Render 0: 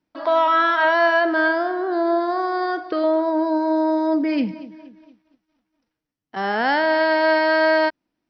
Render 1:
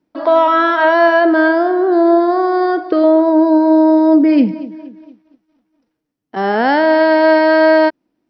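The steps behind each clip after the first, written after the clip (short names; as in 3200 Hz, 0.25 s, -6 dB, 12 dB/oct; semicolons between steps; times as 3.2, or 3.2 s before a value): bell 340 Hz +9.5 dB 2.5 oct; gain +1.5 dB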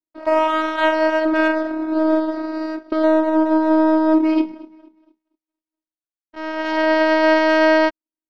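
robotiser 315 Hz; power-law curve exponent 1.4; gain -2.5 dB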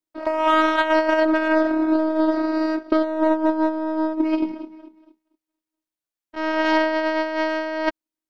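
negative-ratio compressor -19 dBFS, ratio -0.5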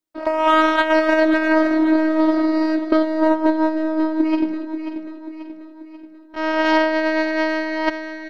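feedback echo 0.537 s, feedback 51%, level -9.5 dB; gain +2.5 dB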